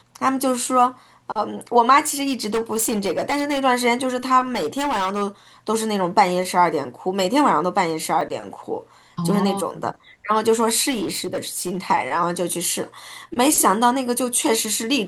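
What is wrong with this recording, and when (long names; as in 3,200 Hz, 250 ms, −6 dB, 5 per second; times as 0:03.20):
0:01.99–0:03.60: clipping −17.5 dBFS
0:04.54–0:05.23: clipping −19 dBFS
0:08.21: drop-out 3.3 ms
0:10.90–0:11.79: clipping −20.5 dBFS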